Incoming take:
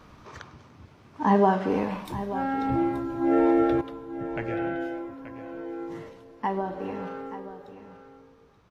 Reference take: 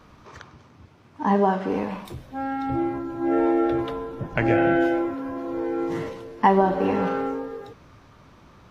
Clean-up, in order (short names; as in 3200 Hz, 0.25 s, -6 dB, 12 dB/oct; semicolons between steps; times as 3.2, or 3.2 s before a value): inverse comb 0.879 s -13 dB; gain correction +11 dB, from 3.81